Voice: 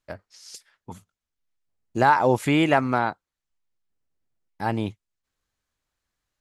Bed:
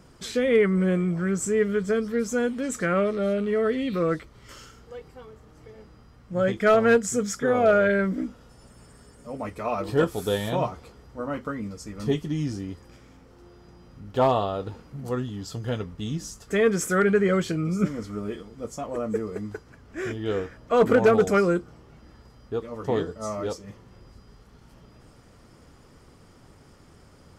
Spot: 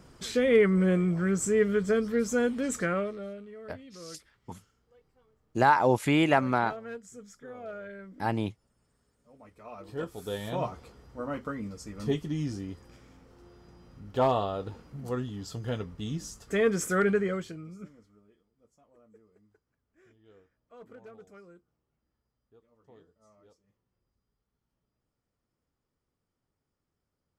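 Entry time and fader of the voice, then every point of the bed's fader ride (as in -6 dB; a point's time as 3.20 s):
3.60 s, -3.5 dB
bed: 2.78 s -1.5 dB
3.54 s -22 dB
9.34 s -22 dB
10.74 s -4 dB
17.10 s -4 dB
18.27 s -31.5 dB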